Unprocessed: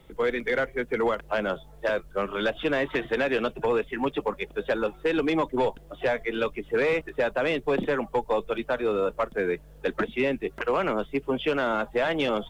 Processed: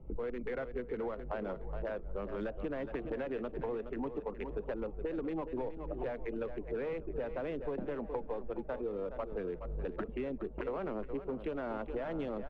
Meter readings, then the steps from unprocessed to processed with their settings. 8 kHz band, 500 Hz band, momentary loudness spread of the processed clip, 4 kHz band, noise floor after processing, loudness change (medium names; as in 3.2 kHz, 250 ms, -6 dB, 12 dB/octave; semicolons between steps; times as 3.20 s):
no reading, -11.5 dB, 2 LU, under -20 dB, -47 dBFS, -12.0 dB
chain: local Wiener filter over 25 samples; recorder AGC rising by 49 dB/s; low-pass 1.9 kHz 6 dB/octave; peaking EQ 130 Hz -2 dB; feedback delay 418 ms, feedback 24%, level -12 dB; flange 0.41 Hz, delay 0.1 ms, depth 2.8 ms, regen +90%; tilt EQ -1.5 dB/octave; band-passed feedback delay 596 ms, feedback 58%, band-pass 620 Hz, level -21 dB; compression 5:1, threshold -35 dBFS, peak gain reduction 11 dB